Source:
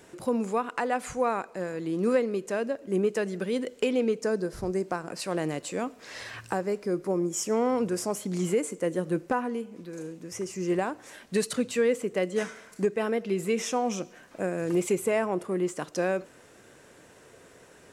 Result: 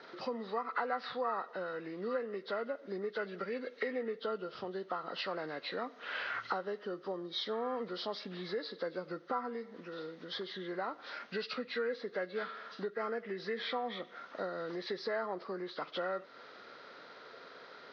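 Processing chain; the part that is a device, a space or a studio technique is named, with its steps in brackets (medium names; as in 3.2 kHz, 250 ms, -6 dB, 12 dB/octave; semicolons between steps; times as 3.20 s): hearing aid with frequency lowering (knee-point frequency compression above 1.1 kHz 1.5:1; compression 2.5:1, threshold -38 dBFS, peak gain reduction 12.5 dB; cabinet simulation 300–6000 Hz, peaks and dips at 330 Hz -6 dB, 1.3 kHz +8 dB, 1.9 kHz +5 dB); trim +1 dB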